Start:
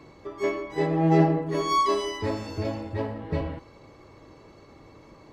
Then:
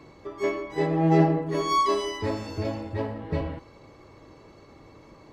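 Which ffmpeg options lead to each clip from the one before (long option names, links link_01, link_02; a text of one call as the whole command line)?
ffmpeg -i in.wav -af anull out.wav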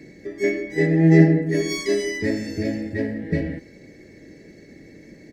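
ffmpeg -i in.wav -af "firequalizer=gain_entry='entry(120,0);entry(180,11);entry(630,-1);entry(1100,-24);entry(1800,14);entry(2900,-4);entry(5300,7)':delay=0.05:min_phase=1" out.wav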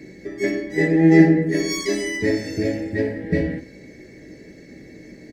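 ffmpeg -i in.wav -af "aecho=1:1:16|58:0.447|0.282,volume=2dB" out.wav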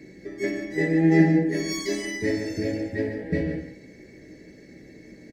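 ffmpeg -i in.wav -af "aecho=1:1:143:0.376,volume=-5dB" out.wav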